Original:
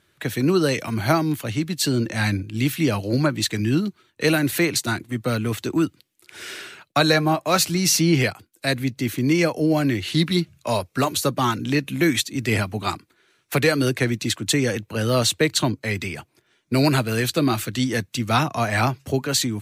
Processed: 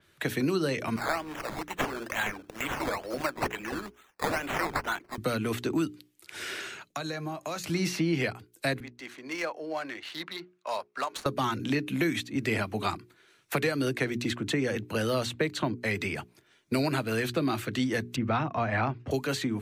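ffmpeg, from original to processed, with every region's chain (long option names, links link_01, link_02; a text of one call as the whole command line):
ffmpeg -i in.wav -filter_complex "[0:a]asettb=1/sr,asplit=3[link_01][link_02][link_03];[link_01]atrim=end=0.964[link_04];[link_02]atrim=start=0.96:end=5.18,asetpts=PTS-STARTPTS,afade=type=in:duration=0.004:curve=qsin,afade=type=out:start_time=4.216:duration=0.004:curve=qsin,highpass=700,acrusher=samples=12:mix=1:aa=0.000001:lfo=1:lforange=7.2:lforate=2.2[link_05];[link_03]atrim=start=5.176[link_06];[link_04][link_05]acrossfade=duration=0.004:curve1=hsin:curve2=qsin[link_07];[link_07][link_06]acrossfade=duration=0.004:curve1=qsin:curve2=hsin,asettb=1/sr,asplit=3[link_08][link_09][link_10];[link_08]atrim=end=6.604[link_11];[link_09]atrim=start=6.6:end=7.64,asetpts=PTS-STARTPTS,afade=type=in:duration=0.004:curve=qsin,afade=type=out:start_time=1.036:duration=0.004:curve=qsin,equalizer=frequency=6700:width=6.2:gain=9.5,acompressor=threshold=-32dB:ratio=6:attack=3.2:release=140:knee=1:detection=peak[link_12];[link_10]atrim=start=7.636[link_13];[link_11][link_12]acrossfade=duration=0.004:curve1=hsin:curve2=qsin[link_14];[link_14][link_13]acrossfade=duration=0.004:curve1=qsin:curve2=hsin,asettb=1/sr,asplit=3[link_15][link_16][link_17];[link_15]atrim=end=8.804[link_18];[link_16]atrim=start=8.8:end=11.26,asetpts=PTS-STARTPTS,afade=type=in:duration=0.004:curve=qsin,afade=type=out:start_time=2.456:duration=0.004:curve=qsin,highpass=940,equalizer=frequency=2700:width=0.67:gain=-8,adynamicsmooth=sensitivity=5:basefreq=2400[link_19];[link_17]atrim=start=11.256[link_20];[link_18][link_19]acrossfade=duration=0.004:curve1=hsin:curve2=qsin[link_21];[link_21][link_20]acrossfade=duration=0.004:curve1=qsin:curve2=hsin,asettb=1/sr,asplit=3[link_22][link_23][link_24];[link_22]atrim=end=18.164[link_25];[link_23]atrim=start=18.16:end=19.11,asetpts=PTS-STARTPTS,afade=type=in:duration=0.004:curve=qsin,afade=type=out:start_time=0.946:duration=0.004:curve=qsin,lowpass=1900,equalizer=frequency=64:width_type=o:width=2.3:gain=9[link_26];[link_24]atrim=start=19.106[link_27];[link_25][link_26]acrossfade=duration=0.004:curve1=hsin:curve2=qsin[link_28];[link_28][link_27]acrossfade=duration=0.004:curve1=qsin:curve2=hsin,bandreject=frequency=60:width_type=h:width=6,bandreject=frequency=120:width_type=h:width=6,bandreject=frequency=180:width_type=h:width=6,bandreject=frequency=240:width_type=h:width=6,bandreject=frequency=300:width_type=h:width=6,bandreject=frequency=360:width_type=h:width=6,bandreject=frequency=420:width_type=h:width=6,acrossover=split=200|2600[link_29][link_30][link_31];[link_29]acompressor=threshold=-38dB:ratio=4[link_32];[link_30]acompressor=threshold=-27dB:ratio=4[link_33];[link_31]acompressor=threshold=-40dB:ratio=4[link_34];[link_32][link_33][link_34]amix=inputs=3:normalize=0,adynamicequalizer=threshold=0.00501:dfrequency=5100:dqfactor=0.7:tfrequency=5100:tqfactor=0.7:attack=5:release=100:ratio=0.375:range=2.5:mode=cutabove:tftype=highshelf" out.wav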